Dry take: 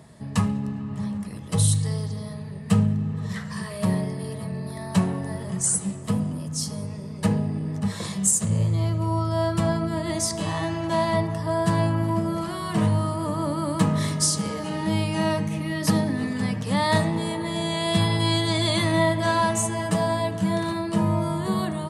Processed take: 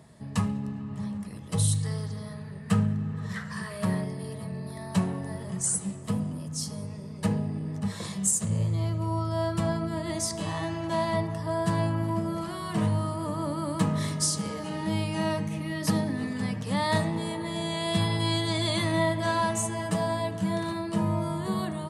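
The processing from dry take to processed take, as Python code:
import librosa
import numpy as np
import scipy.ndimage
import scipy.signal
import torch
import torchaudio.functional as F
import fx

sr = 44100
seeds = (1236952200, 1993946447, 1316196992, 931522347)

y = fx.peak_eq(x, sr, hz=1500.0, db=7.0, octaves=0.74, at=(1.83, 4.04))
y = y * 10.0 ** (-4.5 / 20.0)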